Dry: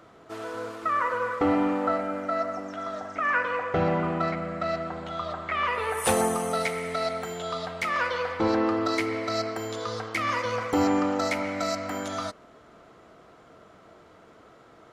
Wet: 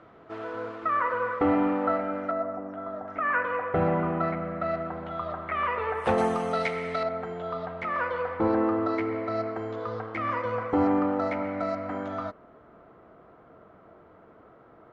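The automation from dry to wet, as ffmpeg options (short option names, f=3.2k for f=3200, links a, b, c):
-af "asetnsamples=n=441:p=0,asendcmd='2.31 lowpass f 1100;3.08 lowpass f 1900;6.18 lowpass f 3600;7.03 lowpass f 1500',lowpass=2.5k"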